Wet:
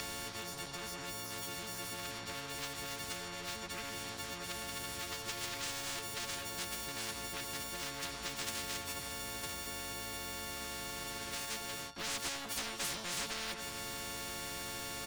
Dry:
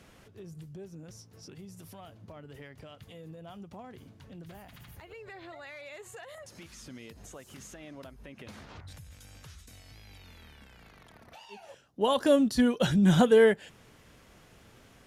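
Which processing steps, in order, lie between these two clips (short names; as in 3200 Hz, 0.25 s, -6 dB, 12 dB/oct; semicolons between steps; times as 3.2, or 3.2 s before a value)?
frequency quantiser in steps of 4 st; dynamic EQ 2500 Hz, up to -6 dB, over -43 dBFS, Q 0.93; compressor 3:1, threshold -38 dBFS, peak gain reduction 15.5 dB; LPF 5200 Hz 24 dB/oct; low shelf 280 Hz -7 dB; on a send: echo 90 ms -16.5 dB; on the sum: sample leveller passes 2; spectral compressor 10:1; gain +4.5 dB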